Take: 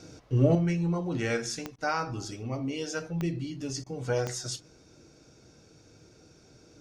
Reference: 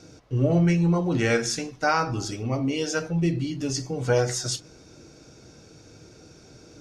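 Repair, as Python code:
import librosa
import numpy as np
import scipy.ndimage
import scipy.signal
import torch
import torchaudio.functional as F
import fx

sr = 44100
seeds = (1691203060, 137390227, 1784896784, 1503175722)

y = fx.fix_declick_ar(x, sr, threshold=10.0)
y = fx.fix_interpolate(y, sr, at_s=(1.76, 3.84), length_ms=22.0)
y = fx.gain(y, sr, db=fx.steps((0.0, 0.0), (0.55, 7.0)))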